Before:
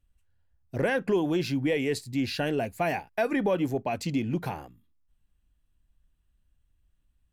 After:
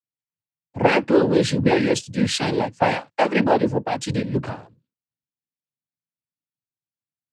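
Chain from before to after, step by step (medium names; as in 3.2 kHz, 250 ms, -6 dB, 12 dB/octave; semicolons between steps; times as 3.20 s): noise-vocoded speech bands 8; three bands expanded up and down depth 70%; trim +8 dB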